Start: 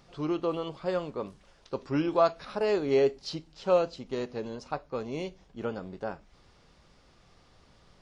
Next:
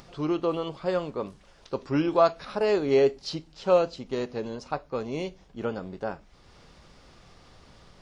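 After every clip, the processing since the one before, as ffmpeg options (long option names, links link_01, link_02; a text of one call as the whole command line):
ffmpeg -i in.wav -af "acompressor=mode=upward:threshold=-49dB:ratio=2.5,volume=3dB" out.wav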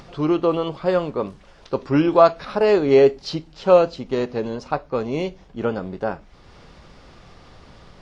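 ffmpeg -i in.wav -af "highshelf=frequency=5800:gain=-10,volume=7.5dB" out.wav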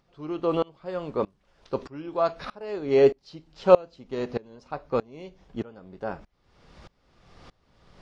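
ffmpeg -i in.wav -af "aeval=exprs='val(0)*pow(10,-26*if(lt(mod(-1.6*n/s,1),2*abs(-1.6)/1000),1-mod(-1.6*n/s,1)/(2*abs(-1.6)/1000),(mod(-1.6*n/s,1)-2*abs(-1.6)/1000)/(1-2*abs(-1.6)/1000))/20)':channel_layout=same" out.wav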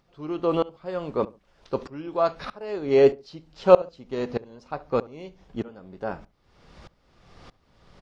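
ffmpeg -i in.wav -filter_complex "[0:a]asplit=2[link_01][link_02];[link_02]adelay=69,lowpass=frequency=1300:poles=1,volume=-19dB,asplit=2[link_03][link_04];[link_04]adelay=69,lowpass=frequency=1300:poles=1,volume=0.26[link_05];[link_01][link_03][link_05]amix=inputs=3:normalize=0,volume=1.5dB" out.wav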